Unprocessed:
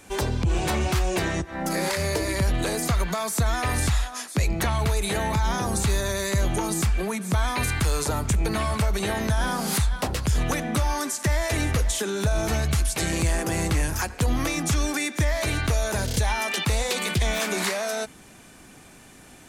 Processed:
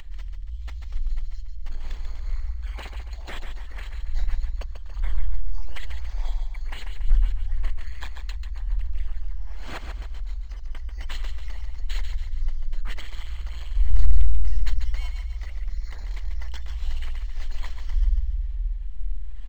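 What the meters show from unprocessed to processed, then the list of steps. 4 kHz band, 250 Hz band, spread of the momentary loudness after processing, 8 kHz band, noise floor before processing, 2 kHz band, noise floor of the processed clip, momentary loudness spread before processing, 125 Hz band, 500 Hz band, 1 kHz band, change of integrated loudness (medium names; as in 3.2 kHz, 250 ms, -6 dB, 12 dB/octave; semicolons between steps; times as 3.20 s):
-14.0 dB, -27.0 dB, 11 LU, -26.0 dB, -49 dBFS, -15.5 dB, -35 dBFS, 2 LU, -7.0 dB, -25.0 dB, -19.5 dB, -8.0 dB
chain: resonances exaggerated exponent 1.5; wind noise 180 Hz -19 dBFS; inverse Chebyshev band-stop 200–1500 Hz, stop band 80 dB; upward compressor, threshold -27 dBFS; comb 0.9 ms, depth 41%; on a send: feedback delay 141 ms, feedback 46%, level -7 dB; on the sum: spring tank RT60 2.9 s, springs 52 ms, DRR -5.5 dB; decimation joined by straight lines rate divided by 4×; trim -6.5 dB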